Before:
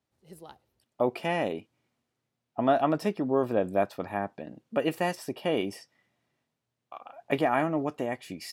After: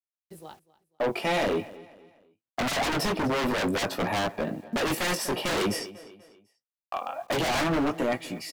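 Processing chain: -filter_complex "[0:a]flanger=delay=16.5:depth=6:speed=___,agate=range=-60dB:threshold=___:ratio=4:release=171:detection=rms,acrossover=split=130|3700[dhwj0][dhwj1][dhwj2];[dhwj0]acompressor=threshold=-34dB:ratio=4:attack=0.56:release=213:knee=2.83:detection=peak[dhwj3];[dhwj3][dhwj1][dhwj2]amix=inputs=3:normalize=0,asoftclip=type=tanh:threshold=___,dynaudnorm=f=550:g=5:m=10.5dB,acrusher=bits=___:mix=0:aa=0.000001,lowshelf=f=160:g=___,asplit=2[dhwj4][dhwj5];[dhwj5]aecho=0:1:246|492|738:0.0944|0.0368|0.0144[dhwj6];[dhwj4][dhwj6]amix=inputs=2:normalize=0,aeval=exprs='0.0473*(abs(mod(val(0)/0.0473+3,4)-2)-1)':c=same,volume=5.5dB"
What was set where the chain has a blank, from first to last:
0.49, -50dB, -30.5dB, 10, -3.5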